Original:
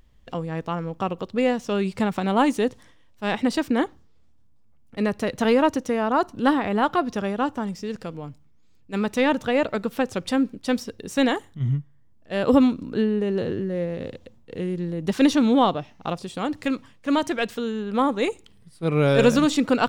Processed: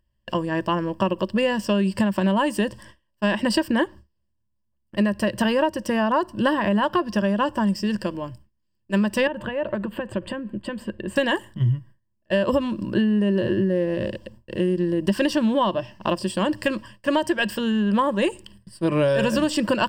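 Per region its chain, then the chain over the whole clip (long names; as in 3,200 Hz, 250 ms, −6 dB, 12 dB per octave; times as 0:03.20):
0:09.27–0:11.16: downward compressor 10 to 1, threshold −28 dBFS + moving average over 8 samples
whole clip: noise gate with hold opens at −40 dBFS; EQ curve with evenly spaced ripples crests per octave 1.3, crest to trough 14 dB; downward compressor 10 to 1, threshold −22 dBFS; level +5 dB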